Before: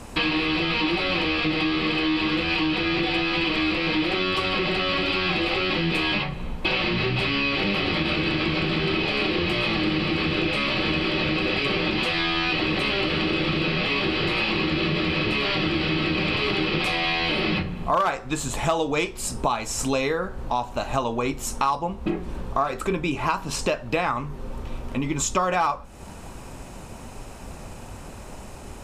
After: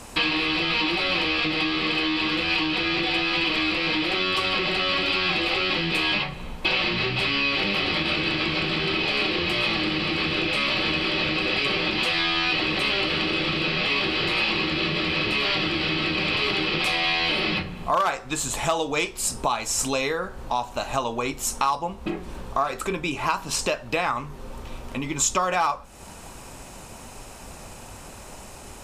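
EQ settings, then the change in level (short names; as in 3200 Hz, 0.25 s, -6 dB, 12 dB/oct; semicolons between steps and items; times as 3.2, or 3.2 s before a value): bell 830 Hz +3.5 dB 2.4 oct; high shelf 2400 Hz +10 dB; -5.0 dB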